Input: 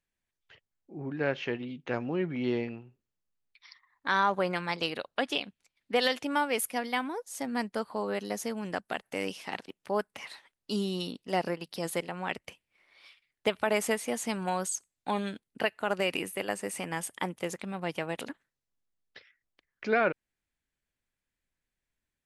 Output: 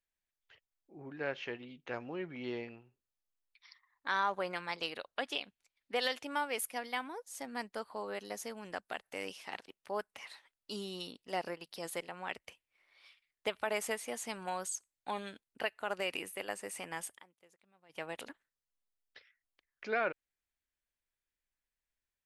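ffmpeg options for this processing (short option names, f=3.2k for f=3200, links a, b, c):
-filter_complex "[0:a]asplit=3[a][b][c];[a]atrim=end=17.23,asetpts=PTS-STARTPTS,afade=t=out:st=17.11:d=0.12:silence=0.0668344[d];[b]atrim=start=17.23:end=17.89,asetpts=PTS-STARTPTS,volume=-23.5dB[e];[c]atrim=start=17.89,asetpts=PTS-STARTPTS,afade=t=in:d=0.12:silence=0.0668344[f];[d][e][f]concat=n=3:v=0:a=1,equalizer=f=170:w=0.63:g=-8.5,volume=-5.5dB"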